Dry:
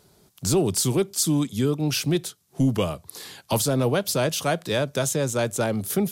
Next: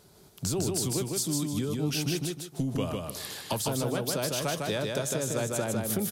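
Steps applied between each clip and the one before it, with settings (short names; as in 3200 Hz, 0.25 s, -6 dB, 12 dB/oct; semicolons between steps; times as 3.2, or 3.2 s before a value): compressor, threshold -28 dBFS, peak gain reduction 11 dB; on a send: feedback echo 0.154 s, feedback 30%, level -3 dB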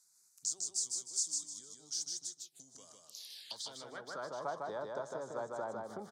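envelope phaser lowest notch 480 Hz, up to 2600 Hz, full sweep at -30.5 dBFS; band-pass sweep 6800 Hz -> 980 Hz, 3.27–4.36; gain +1.5 dB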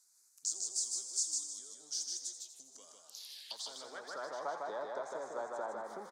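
HPF 310 Hz 12 dB/oct; on a send: frequency-shifting echo 84 ms, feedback 62%, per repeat +140 Hz, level -11 dB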